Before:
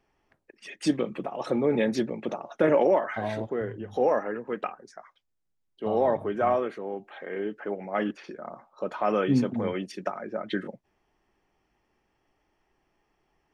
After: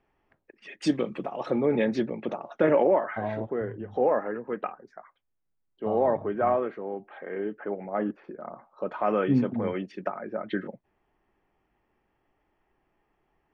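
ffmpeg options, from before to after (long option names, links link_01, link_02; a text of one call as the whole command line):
ffmpeg -i in.wav -af "asetnsamples=nb_out_samples=441:pad=0,asendcmd='0.82 lowpass f 6900;1.4 lowpass f 3600;2.81 lowpass f 2000;7.89 lowpass f 1200;8.41 lowpass f 2500',lowpass=2900" out.wav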